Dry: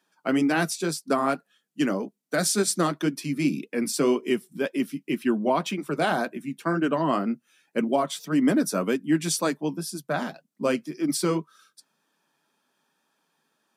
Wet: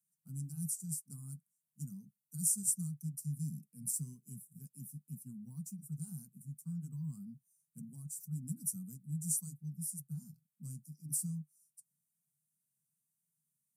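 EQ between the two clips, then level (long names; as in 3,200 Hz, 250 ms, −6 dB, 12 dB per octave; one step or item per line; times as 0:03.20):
high-pass filter 98 Hz
inverse Chebyshev band-stop filter 310–3,700 Hz, stop band 50 dB
low-shelf EQ 260 Hz +7.5 dB
−1.5 dB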